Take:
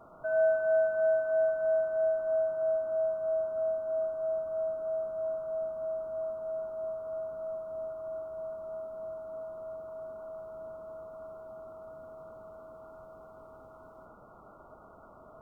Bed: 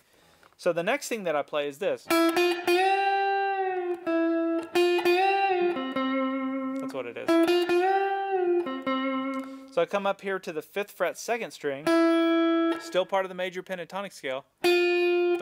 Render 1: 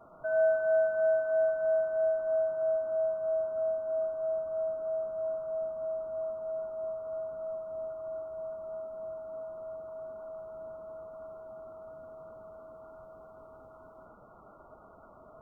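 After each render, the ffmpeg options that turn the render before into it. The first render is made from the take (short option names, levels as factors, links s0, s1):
-af "afftdn=nr=6:nf=-54"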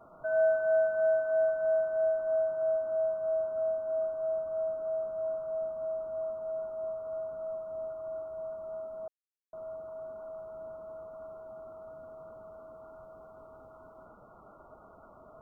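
-filter_complex "[0:a]asplit=3[s0][s1][s2];[s0]atrim=end=9.08,asetpts=PTS-STARTPTS,afade=t=out:st=9.076:d=0.004:c=hsin[s3];[s1]atrim=start=9.08:end=9.53,asetpts=PTS-STARTPTS,volume=0[s4];[s2]atrim=start=9.53,asetpts=PTS-STARTPTS,afade=t=in:d=0.004:c=hsin[s5];[s3][s4][s5]concat=n=3:v=0:a=1"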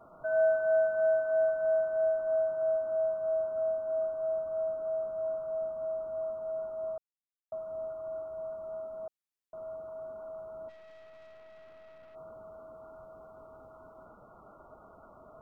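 -filter_complex "[0:a]asplit=3[s0][s1][s2];[s0]afade=t=out:st=10.68:d=0.02[s3];[s1]aeval=exprs='(tanh(398*val(0)+0.5)-tanh(0.5))/398':c=same,afade=t=in:st=10.68:d=0.02,afade=t=out:st=12.14:d=0.02[s4];[s2]afade=t=in:st=12.14:d=0.02[s5];[s3][s4][s5]amix=inputs=3:normalize=0,asplit=3[s6][s7][s8];[s6]atrim=end=6.98,asetpts=PTS-STARTPTS,afade=t=out:st=6.976:d=0.004:c=hsin[s9];[s7]atrim=start=6.98:end=7.52,asetpts=PTS-STARTPTS,volume=0[s10];[s8]atrim=start=7.52,asetpts=PTS-STARTPTS,afade=t=in:d=0.004:c=hsin[s11];[s9][s10][s11]concat=n=3:v=0:a=1"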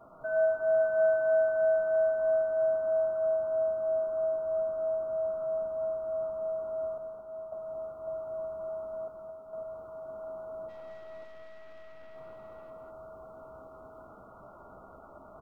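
-filter_complex "[0:a]asplit=2[s0][s1];[s1]adelay=15,volume=0.355[s2];[s0][s2]amix=inputs=2:normalize=0,aecho=1:1:45|117|214|553|756:0.224|0.133|0.596|0.631|0.299"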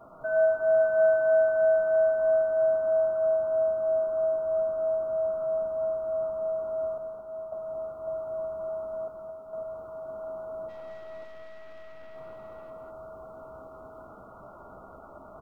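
-af "volume=1.5"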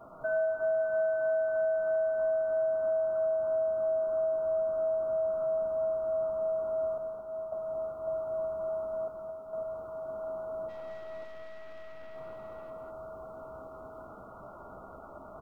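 -af "acompressor=threshold=0.0447:ratio=6"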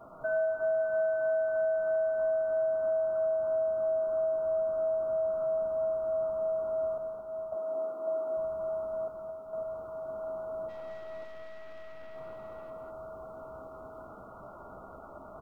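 -filter_complex "[0:a]asettb=1/sr,asplit=3[s0][s1][s2];[s0]atrim=end=7.564[s3];[s1]atrim=start=7.56:end=8.37,asetpts=PTS-STARTPTS,afade=t=in:d=0.004:c=qsin,afade=t=out:st=0.806:d=0.004:c=qsin,highpass=f=290:t=q:w=1.9[s4];[s2]atrim=start=8.366[s5];[s3][s4]acrossfade=d=0.004:c1=hsin:c2=qsin[s6];[s6][s5]acrossfade=d=0.004:c1=qsin:c2=hsin"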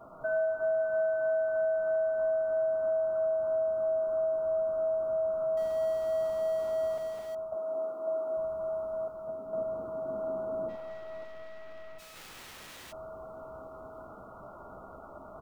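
-filter_complex "[0:a]asettb=1/sr,asplit=3[s0][s1][s2];[s0]atrim=end=5.574[s3];[s1]atrim=start=5.57:end=7.35,asetpts=PTS-STARTPTS,afade=t=in:d=0.004:c=qsin,afade=t=out:st=1.776:d=0.004:c=qsin,aeval=exprs='val(0)+0.5*0.00668*sgn(val(0))':c=same[s4];[s2]atrim=start=7.346[s5];[s3][s4]acrossfade=d=0.004:c1=hsin:c2=qsin[s6];[s6][s5]acrossfade=d=0.004:c1=qsin:c2=hsin,asettb=1/sr,asplit=3[s7][s8][s9];[s7]atrim=end=9.274[s10];[s8]atrim=start=9.27:end=10.76,asetpts=PTS-STARTPTS,afade=t=in:d=0.004:c=qsin,afade=t=out:st=1.486:d=0.004:c=qsin,equalizer=f=250:t=o:w=1.7:g=11.5[s11];[s9]atrim=start=10.756[s12];[s10][s11]acrossfade=d=0.004:c1=hsin:c2=qsin[s13];[s13][s12]acrossfade=d=0.004:c1=qsin:c2=hsin,asplit=3[s14][s15][s16];[s14]afade=t=out:st=11.98:d=0.02[s17];[s15]aeval=exprs='(mod(158*val(0)+1,2)-1)/158':c=same,afade=t=in:st=11.98:d=0.02,afade=t=out:st=12.91:d=0.02[s18];[s16]afade=t=in:st=12.91:d=0.02[s19];[s17][s18][s19]amix=inputs=3:normalize=0"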